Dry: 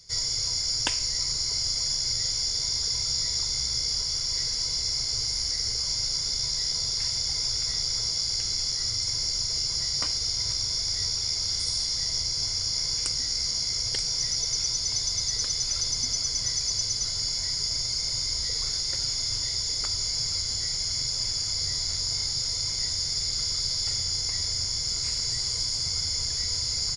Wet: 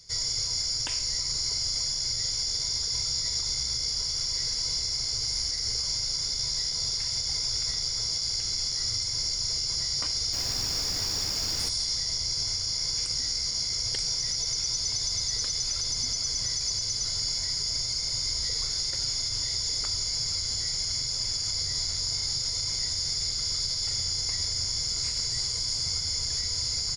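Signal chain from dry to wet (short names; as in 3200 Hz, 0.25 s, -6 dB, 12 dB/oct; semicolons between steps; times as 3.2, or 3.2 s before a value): limiter -19.5 dBFS, peak gain reduction 10 dB; 10.32–11.68 added noise pink -40 dBFS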